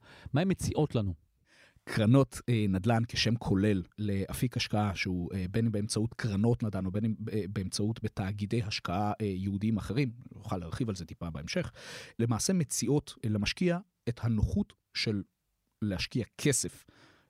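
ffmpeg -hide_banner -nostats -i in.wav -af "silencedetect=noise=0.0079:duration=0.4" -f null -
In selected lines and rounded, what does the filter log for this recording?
silence_start: 1.14
silence_end: 1.87 | silence_duration: 0.74
silence_start: 15.22
silence_end: 15.82 | silence_duration: 0.60
silence_start: 16.77
silence_end: 17.30 | silence_duration: 0.53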